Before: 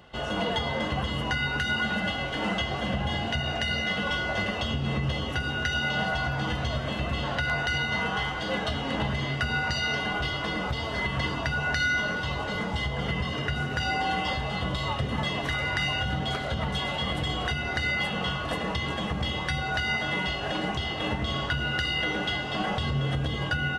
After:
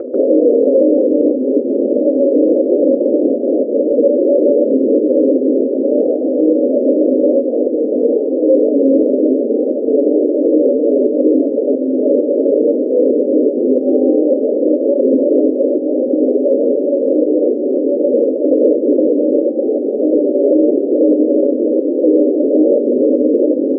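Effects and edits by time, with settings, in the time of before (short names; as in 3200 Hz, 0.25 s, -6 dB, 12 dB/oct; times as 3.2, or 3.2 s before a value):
16.31–17.94 spectral whitening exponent 0.6
whole clip: Chebyshev band-pass 250–580 Hz, order 5; upward compressor, threshold -43 dBFS; maximiser +30 dB; gain -2 dB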